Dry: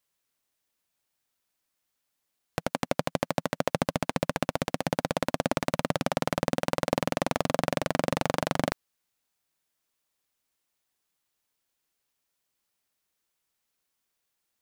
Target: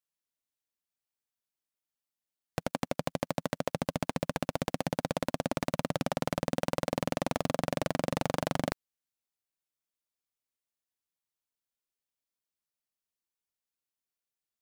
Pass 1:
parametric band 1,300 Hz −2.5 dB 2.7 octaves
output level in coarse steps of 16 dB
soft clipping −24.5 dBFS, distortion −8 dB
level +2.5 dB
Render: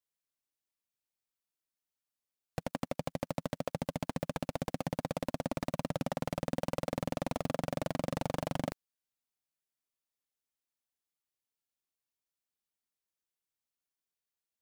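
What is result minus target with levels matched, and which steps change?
soft clipping: distortion +12 dB
change: soft clipping −13.5 dBFS, distortion −20 dB

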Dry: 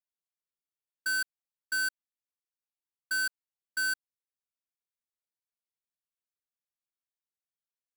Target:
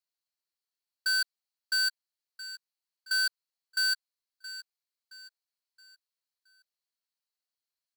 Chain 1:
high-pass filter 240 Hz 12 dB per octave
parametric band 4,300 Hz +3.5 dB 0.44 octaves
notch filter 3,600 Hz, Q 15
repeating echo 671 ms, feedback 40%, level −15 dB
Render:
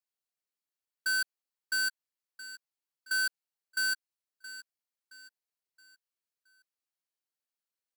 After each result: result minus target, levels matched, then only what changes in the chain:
250 Hz band +10.5 dB; 4,000 Hz band −4.5 dB
change: high-pass filter 500 Hz 12 dB per octave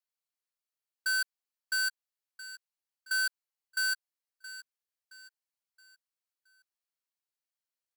4,000 Hz band −4.5 dB
change: parametric band 4,300 Hz +11.5 dB 0.44 octaves

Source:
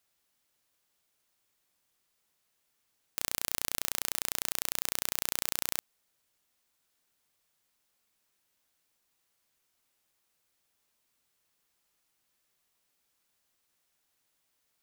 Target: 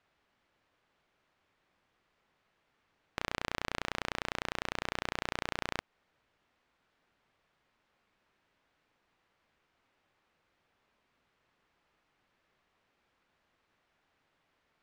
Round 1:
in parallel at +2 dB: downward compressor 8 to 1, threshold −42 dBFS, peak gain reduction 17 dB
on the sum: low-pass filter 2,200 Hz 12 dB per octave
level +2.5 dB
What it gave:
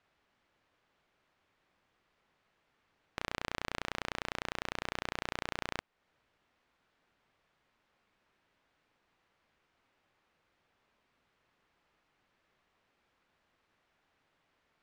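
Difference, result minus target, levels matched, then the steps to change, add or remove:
downward compressor: peak gain reduction +8.5 dB
change: downward compressor 8 to 1, threshold −32.5 dBFS, peak gain reduction 8.5 dB

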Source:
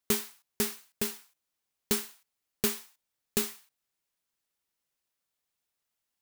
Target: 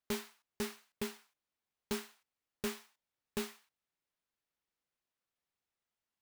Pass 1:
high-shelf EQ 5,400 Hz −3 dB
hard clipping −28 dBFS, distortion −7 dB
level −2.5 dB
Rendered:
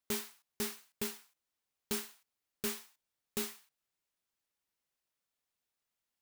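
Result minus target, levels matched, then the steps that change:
8,000 Hz band +3.5 dB
change: high-shelf EQ 5,400 Hz −13.5 dB

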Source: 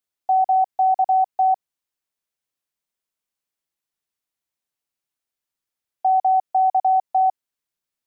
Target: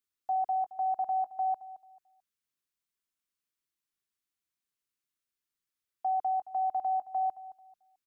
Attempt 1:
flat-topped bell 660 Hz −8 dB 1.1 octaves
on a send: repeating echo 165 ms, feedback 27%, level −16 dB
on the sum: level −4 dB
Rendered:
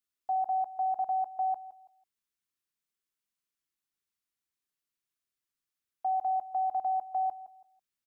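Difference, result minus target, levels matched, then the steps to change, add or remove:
echo 55 ms early
change: repeating echo 220 ms, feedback 27%, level −16 dB

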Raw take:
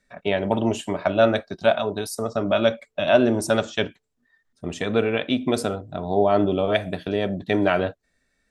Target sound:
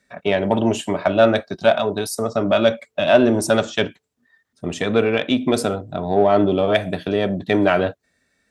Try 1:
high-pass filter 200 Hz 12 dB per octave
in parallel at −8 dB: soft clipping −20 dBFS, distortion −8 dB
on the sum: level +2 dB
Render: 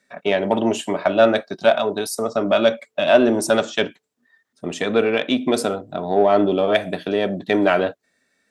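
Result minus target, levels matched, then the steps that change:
125 Hz band −6.0 dB
change: high-pass filter 79 Hz 12 dB per octave

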